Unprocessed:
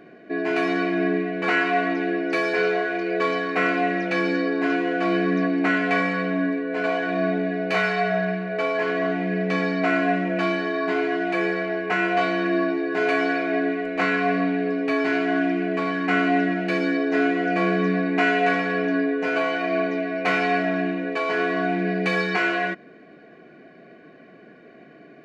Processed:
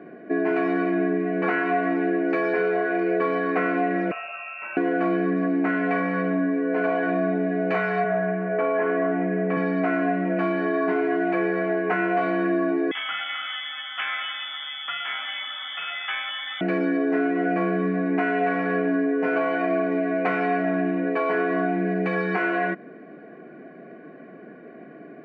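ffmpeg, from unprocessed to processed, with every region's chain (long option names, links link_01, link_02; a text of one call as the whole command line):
ffmpeg -i in.wav -filter_complex "[0:a]asettb=1/sr,asplit=3[link_01][link_02][link_03];[link_01]atrim=end=4.114[link_04];[link_02]atrim=start=4.11:end=4.77,asetpts=PTS-STARTPTS,afade=type=in:duration=0.004:curve=qsin,afade=type=out:start_time=0.656:duration=0.004:curve=qsin,acrusher=bits=8:mode=log:mix=0:aa=0.000001,acrossover=split=110|250[link_05][link_06][link_07];[link_05]acompressor=threshold=-55dB:ratio=4[link_08];[link_06]acompressor=threshold=-44dB:ratio=4[link_09];[link_07]acompressor=threshold=-34dB:ratio=4[link_10];[link_08][link_09][link_10]amix=inputs=3:normalize=0,lowpass=frequency=2600:width_type=q:width=0.5098,lowpass=frequency=2600:width_type=q:width=0.6013,lowpass=frequency=2600:width_type=q:width=0.9,lowpass=frequency=2600:width_type=q:width=2.563,afreqshift=-3000[link_11];[link_03]atrim=start=4.766[link_12];[link_04][link_11]acrossfade=duration=0.004:curve1=hsin:curve2=qsin[link_13];[link_13][link_12]acrossfade=duration=0.004:curve1=qsin:curve2=hsin,asettb=1/sr,asplit=3[link_14][link_15][link_16];[link_14]atrim=end=8.044[link_17];[link_15]atrim=start=8.04:end=9.57,asetpts=PTS-STARTPTS,afade=type=in:duration=0.004:curve=qsin,afade=type=out:start_time=1.526:duration=0.004:curve=qsin,asoftclip=type=hard:threshold=-16.5dB,highpass=180,lowpass=2400[link_18];[link_16]atrim=start=9.566[link_19];[link_17][link_18]acrossfade=duration=0.004:curve1=hsin:curve2=qsin[link_20];[link_20][link_19]acrossfade=duration=0.004:curve1=qsin:curve2=hsin,asettb=1/sr,asplit=3[link_21][link_22][link_23];[link_21]atrim=end=12.914[link_24];[link_22]atrim=start=12.91:end=16.61,asetpts=PTS-STARTPTS,afade=type=in:duration=0.004:curve=qsin,afade=type=out:start_time=3.696:duration=0.004:curve=qsin,lowpass=frequency=3100:width_type=q:width=0.5098,lowpass=frequency=3100:width_type=q:width=0.6013,lowpass=frequency=3100:width_type=q:width=0.9,lowpass=frequency=3100:width_type=q:width=2.563,afreqshift=-3700,aecho=1:1:625:0.075,atrim=end_sample=163170[link_25];[link_23]atrim=start=16.606[link_26];[link_24][link_25]acrossfade=duration=0.004:curve1=hsin:curve2=qsin[link_27];[link_27][link_26]acrossfade=duration=0.004:curve1=qsin:curve2=hsin,equalizer=frequency=110:width_type=o:width=2.3:gain=7,acompressor=threshold=-22dB:ratio=6,acrossover=split=170 2200:gain=0.0891 1 0.0891[link_28][link_29][link_30];[link_28][link_29][link_30]amix=inputs=3:normalize=0,volume=3.5dB" out.wav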